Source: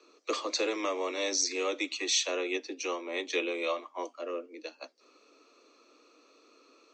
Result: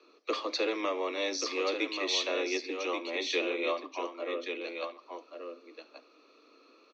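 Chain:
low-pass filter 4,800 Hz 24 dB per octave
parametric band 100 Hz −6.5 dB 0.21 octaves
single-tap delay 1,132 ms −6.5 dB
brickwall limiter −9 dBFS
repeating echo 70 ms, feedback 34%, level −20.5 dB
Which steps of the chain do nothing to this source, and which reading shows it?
parametric band 100 Hz: nothing at its input below 240 Hz
brickwall limiter −9 dBFS: peak of its input −16.5 dBFS

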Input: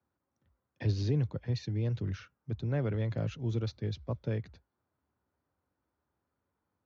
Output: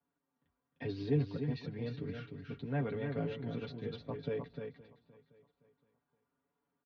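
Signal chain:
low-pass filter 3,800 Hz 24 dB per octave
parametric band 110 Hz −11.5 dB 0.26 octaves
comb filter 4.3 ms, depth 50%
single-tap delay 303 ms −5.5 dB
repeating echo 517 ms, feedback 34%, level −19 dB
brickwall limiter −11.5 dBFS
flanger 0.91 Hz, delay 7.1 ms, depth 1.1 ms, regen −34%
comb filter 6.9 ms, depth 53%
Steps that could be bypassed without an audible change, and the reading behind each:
brickwall limiter −11.5 dBFS: peak of its input −21.0 dBFS

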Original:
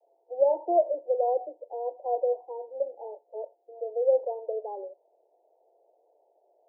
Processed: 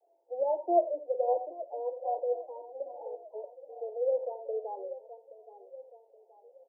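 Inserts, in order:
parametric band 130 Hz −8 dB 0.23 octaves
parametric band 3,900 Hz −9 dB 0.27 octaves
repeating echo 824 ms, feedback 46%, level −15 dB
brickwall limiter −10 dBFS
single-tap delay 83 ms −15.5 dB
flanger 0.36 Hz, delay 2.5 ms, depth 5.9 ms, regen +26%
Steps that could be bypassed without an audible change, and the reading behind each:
parametric band 130 Hz: nothing at its input below 340 Hz
parametric band 3,900 Hz: nothing at its input above 960 Hz
brickwall limiter −10 dBFS: peak of its input −12.5 dBFS

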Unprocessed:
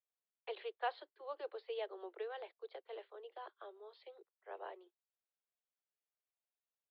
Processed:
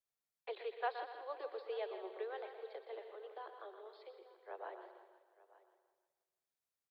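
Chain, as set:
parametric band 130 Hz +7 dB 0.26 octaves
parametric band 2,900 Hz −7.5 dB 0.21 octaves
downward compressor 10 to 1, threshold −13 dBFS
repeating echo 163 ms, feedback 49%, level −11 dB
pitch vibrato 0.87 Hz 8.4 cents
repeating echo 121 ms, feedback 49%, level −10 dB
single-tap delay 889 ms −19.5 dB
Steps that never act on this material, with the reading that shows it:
parametric band 130 Hz: nothing at its input below 320 Hz
downward compressor, threshold −13 dBFS: peak of its input −28.0 dBFS

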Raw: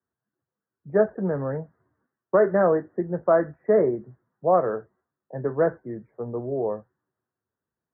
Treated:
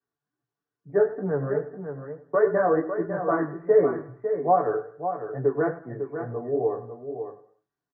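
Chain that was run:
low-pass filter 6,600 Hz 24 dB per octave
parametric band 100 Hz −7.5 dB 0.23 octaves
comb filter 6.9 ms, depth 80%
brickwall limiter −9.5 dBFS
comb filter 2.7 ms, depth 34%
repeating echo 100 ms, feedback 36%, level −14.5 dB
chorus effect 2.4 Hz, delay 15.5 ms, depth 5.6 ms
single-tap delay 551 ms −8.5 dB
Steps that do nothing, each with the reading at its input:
low-pass filter 6,600 Hz: nothing at its input above 1,800 Hz

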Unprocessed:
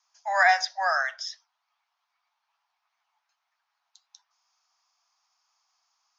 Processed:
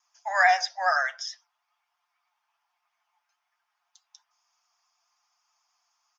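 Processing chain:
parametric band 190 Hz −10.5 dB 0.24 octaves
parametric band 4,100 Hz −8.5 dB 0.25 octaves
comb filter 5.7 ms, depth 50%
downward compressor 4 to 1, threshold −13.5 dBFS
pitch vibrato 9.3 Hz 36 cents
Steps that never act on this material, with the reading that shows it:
parametric band 190 Hz: nothing at its input below 510 Hz

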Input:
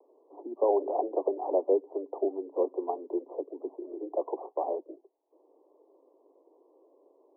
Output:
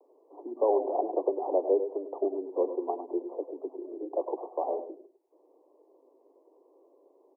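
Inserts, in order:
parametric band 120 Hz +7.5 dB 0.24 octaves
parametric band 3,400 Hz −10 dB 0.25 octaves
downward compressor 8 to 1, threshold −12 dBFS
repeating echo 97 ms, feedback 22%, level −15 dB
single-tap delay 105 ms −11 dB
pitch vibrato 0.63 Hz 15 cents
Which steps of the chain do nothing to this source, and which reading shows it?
parametric band 120 Hz: nothing at its input below 250 Hz
parametric band 3,400 Hz: nothing at its input above 1,100 Hz
downward compressor, threshold −12 dBFS: peak of its input −14.0 dBFS

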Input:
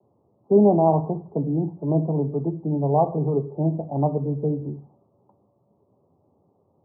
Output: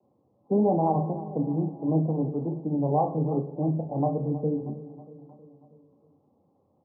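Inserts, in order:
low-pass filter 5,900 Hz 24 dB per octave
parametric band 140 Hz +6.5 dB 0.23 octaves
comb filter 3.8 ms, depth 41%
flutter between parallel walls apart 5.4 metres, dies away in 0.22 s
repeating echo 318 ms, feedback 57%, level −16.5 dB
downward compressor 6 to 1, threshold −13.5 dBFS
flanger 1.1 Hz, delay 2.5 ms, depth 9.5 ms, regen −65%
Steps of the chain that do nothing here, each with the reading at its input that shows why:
low-pass filter 5,900 Hz: nothing at its input above 960 Hz

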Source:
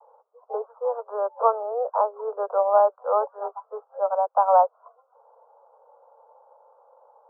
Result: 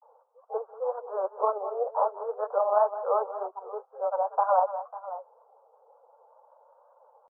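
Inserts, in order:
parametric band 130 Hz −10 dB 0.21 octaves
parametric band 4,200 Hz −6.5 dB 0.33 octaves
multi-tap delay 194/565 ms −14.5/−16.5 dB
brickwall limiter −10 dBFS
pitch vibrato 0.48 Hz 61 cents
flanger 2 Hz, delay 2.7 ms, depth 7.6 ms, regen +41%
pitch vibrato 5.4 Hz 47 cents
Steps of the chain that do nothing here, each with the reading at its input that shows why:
parametric band 130 Hz: nothing at its input below 380 Hz
parametric band 4,200 Hz: nothing at its input above 1,400 Hz

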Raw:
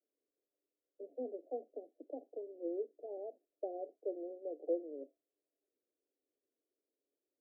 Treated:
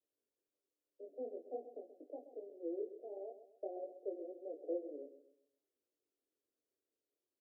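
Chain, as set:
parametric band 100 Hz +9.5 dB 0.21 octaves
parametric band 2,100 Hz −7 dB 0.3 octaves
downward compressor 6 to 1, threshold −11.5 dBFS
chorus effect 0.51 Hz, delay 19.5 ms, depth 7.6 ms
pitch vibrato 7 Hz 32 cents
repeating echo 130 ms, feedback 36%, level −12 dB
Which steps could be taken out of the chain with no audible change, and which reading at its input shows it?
parametric band 100 Hz: nothing at its input below 240 Hz
parametric band 2,100 Hz: nothing at its input above 810 Hz
downward compressor, threshold −11.5 dBFS: peak of its input −25.0 dBFS

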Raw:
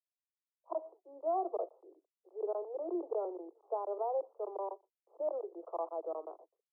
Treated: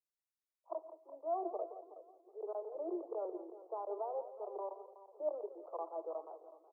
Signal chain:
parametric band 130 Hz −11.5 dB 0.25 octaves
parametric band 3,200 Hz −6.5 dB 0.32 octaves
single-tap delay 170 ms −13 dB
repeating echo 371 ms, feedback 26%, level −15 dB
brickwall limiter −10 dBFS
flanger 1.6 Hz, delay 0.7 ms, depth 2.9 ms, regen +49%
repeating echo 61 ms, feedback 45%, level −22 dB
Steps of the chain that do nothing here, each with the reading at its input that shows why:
parametric band 130 Hz: nothing at its input below 290 Hz
parametric band 3,200 Hz: nothing at its input above 1,300 Hz
brickwall limiter −10 dBFS: peak of its input −24.5 dBFS

